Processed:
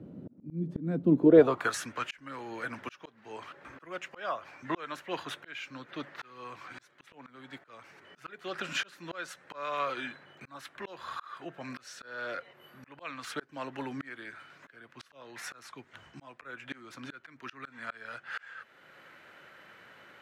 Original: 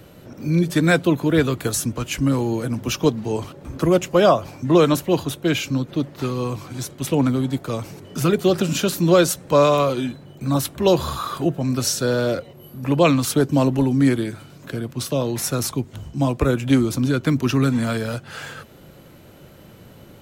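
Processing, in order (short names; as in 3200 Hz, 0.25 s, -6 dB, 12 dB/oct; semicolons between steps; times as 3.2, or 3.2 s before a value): band-pass sweep 230 Hz -> 1700 Hz, 1.11–1.73; auto swell 0.644 s; gain +6 dB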